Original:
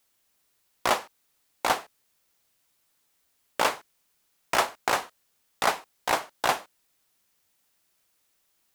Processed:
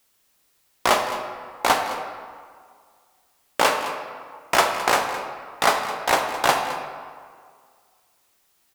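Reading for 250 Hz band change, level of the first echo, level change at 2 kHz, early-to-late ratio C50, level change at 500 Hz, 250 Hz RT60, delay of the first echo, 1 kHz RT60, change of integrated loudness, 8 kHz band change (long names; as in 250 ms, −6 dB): +6.5 dB, −14.5 dB, +6.5 dB, 5.5 dB, +7.0 dB, 1.9 s, 213 ms, 2.0 s, +5.0 dB, +6.0 dB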